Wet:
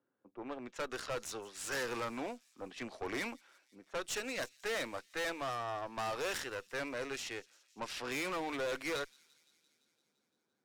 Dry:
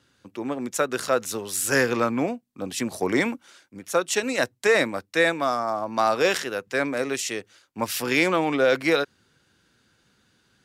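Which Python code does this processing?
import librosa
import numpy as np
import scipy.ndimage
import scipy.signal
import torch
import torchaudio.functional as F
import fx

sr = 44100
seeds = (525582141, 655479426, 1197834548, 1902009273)

y = fx.env_lowpass(x, sr, base_hz=700.0, full_db=-19.5)
y = scipy.signal.sosfilt(scipy.signal.butter(2, 220.0, 'highpass', fs=sr, output='sos'), y)
y = fx.low_shelf(y, sr, hz=370.0, db=-9.5)
y = fx.tube_stage(y, sr, drive_db=28.0, bias=0.55)
y = fx.echo_wet_highpass(y, sr, ms=171, feedback_pct=71, hz=4400.0, wet_db=-18.5)
y = y * librosa.db_to_amplitude(-5.5)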